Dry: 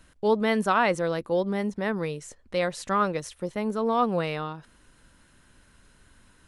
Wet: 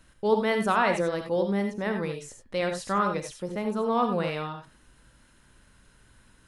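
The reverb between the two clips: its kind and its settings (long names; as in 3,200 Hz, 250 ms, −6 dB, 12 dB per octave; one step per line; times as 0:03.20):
reverb whose tail is shaped and stops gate 110 ms rising, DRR 5 dB
level −2 dB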